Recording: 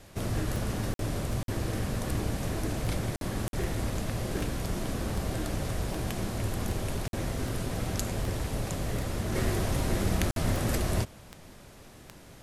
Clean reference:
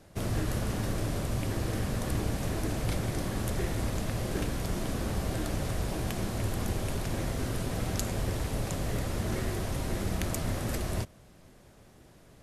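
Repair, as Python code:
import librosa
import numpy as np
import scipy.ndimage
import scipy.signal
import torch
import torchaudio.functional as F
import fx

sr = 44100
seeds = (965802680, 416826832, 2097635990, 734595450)

y = fx.fix_declick_ar(x, sr, threshold=10.0)
y = fx.fix_interpolate(y, sr, at_s=(0.94, 1.43, 3.16, 3.48, 7.08, 10.31), length_ms=52.0)
y = fx.noise_reduce(y, sr, print_start_s=11.55, print_end_s=12.05, reduce_db=6.0)
y = fx.gain(y, sr, db=fx.steps((0.0, 0.0), (9.35, -4.0)))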